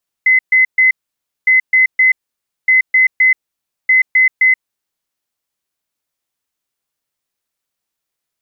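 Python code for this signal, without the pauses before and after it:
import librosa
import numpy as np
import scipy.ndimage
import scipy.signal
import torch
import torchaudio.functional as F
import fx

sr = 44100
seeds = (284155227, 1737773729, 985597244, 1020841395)

y = fx.beep_pattern(sr, wave='sine', hz=2040.0, on_s=0.13, off_s=0.13, beeps=3, pause_s=0.56, groups=4, level_db=-6.5)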